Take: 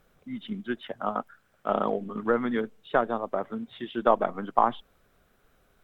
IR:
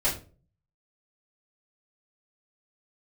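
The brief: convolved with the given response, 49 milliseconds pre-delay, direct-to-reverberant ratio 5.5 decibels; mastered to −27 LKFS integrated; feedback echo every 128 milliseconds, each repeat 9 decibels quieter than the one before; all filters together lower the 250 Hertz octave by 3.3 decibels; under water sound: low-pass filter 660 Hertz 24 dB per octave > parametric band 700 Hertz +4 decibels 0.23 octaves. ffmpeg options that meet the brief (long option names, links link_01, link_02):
-filter_complex "[0:a]equalizer=frequency=250:width_type=o:gain=-4,aecho=1:1:128|256|384|512:0.355|0.124|0.0435|0.0152,asplit=2[link_01][link_02];[1:a]atrim=start_sample=2205,adelay=49[link_03];[link_02][link_03]afir=irnorm=-1:irlink=0,volume=-16dB[link_04];[link_01][link_04]amix=inputs=2:normalize=0,lowpass=frequency=660:width=0.5412,lowpass=frequency=660:width=1.3066,equalizer=frequency=700:width_type=o:width=0.23:gain=4,volume=3dB"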